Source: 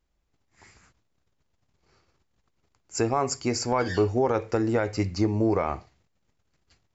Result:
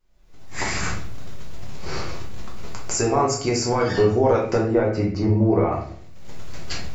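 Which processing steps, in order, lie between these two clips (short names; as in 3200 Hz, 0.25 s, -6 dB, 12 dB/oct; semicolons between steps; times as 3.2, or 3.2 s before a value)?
recorder AGC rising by 50 dB/s; 4.6–5.72 LPF 1300 Hz 6 dB/oct; shoebox room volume 65 m³, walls mixed, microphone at 1 m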